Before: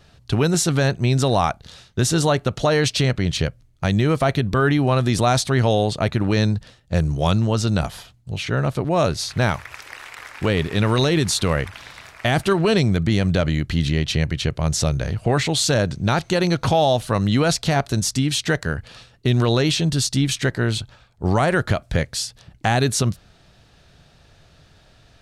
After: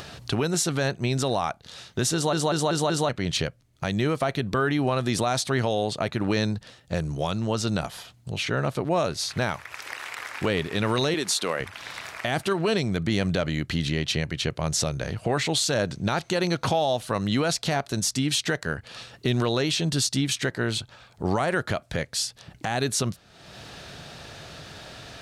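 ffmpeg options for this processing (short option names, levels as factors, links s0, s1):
-filter_complex "[0:a]asettb=1/sr,asplit=3[s0][s1][s2];[s0]atrim=end=11.144[s3];[s1]atrim=start=11.14:end=11.6,asetpts=PTS-STARTPTS,afade=t=in:d=0.004:c=qsin,afade=t=out:st=0.456:d=0.004:c=qsin,highpass=280[s4];[s2]atrim=start=11.596[s5];[s3][s4]acrossfade=d=0.004:c1=hsin:c2=qsin[s6];[s6][s5]acrossfade=d=0.004:c1=qsin:c2=hsin,asplit=6[s7][s8][s9][s10][s11][s12];[s7]atrim=end=2.332[s13];[s8]atrim=start=2.138:end=2.332[s14];[s9]atrim=start=2.138:end=2.332[s15];[s10]atrim=start=2.138:end=2.332[s16];[s11]atrim=start=2.138:end=2.332[s17];[s12]atrim=start=3.088[s18];[s13][s14]acrossfade=d=0.004:c1=hsin:c2=hsin[s19];[s19][s15]acrossfade=d=0.004:c1=hsin:c2=hsin[s20];[s20][s16]acrossfade=d=0.004:c1=hsin:c2=hsin[s21];[s21][s17]acrossfade=d=0.004:c1=hsin:c2=hsin[s22];[s22][s18]acrossfade=d=0.004:c1=hsin:c2=hsin,highpass=f=210:p=1,acompressor=mode=upward:threshold=0.0355:ratio=2.5,alimiter=limit=0.2:level=0:latency=1:release=353"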